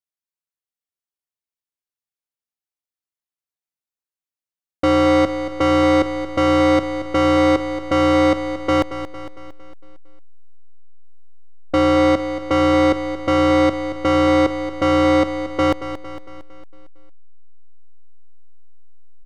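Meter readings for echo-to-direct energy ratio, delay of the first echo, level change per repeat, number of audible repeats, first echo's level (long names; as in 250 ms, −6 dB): −9.5 dB, 228 ms, −5.5 dB, 5, −11.0 dB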